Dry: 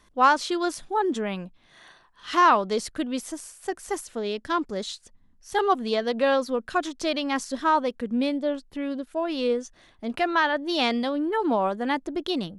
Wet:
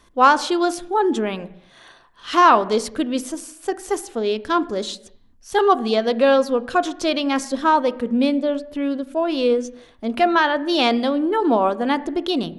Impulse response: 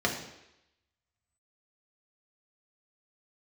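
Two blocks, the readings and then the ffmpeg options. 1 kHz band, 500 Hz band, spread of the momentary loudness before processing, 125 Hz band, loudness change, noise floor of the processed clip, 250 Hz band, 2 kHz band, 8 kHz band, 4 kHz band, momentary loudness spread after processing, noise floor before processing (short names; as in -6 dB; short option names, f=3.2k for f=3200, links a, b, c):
+5.5 dB, +6.5 dB, 13 LU, n/a, +6.0 dB, -52 dBFS, +6.5 dB, +4.0 dB, +4.5 dB, +5.0 dB, 12 LU, -60 dBFS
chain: -filter_complex "[0:a]asplit=2[a][b];[1:a]atrim=start_sample=2205,afade=t=out:st=0.42:d=0.01,atrim=end_sample=18963,lowpass=2.7k[c];[b][c]afir=irnorm=-1:irlink=0,volume=-20dB[d];[a][d]amix=inputs=2:normalize=0,volume=4.5dB"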